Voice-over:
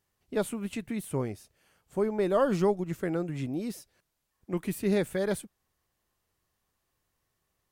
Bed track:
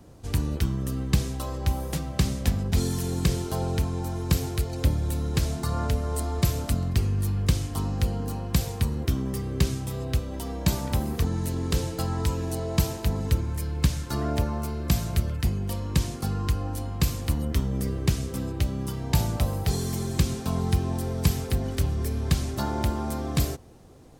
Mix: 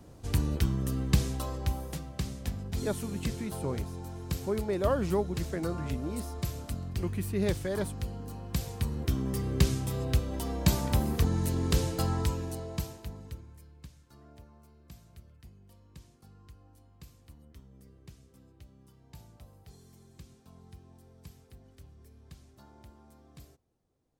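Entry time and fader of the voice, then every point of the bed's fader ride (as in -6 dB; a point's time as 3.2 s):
2.50 s, -3.5 dB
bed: 1.36 s -2 dB
2.16 s -10.5 dB
8.27 s -10.5 dB
9.47 s -1 dB
12.09 s -1 dB
13.92 s -27.5 dB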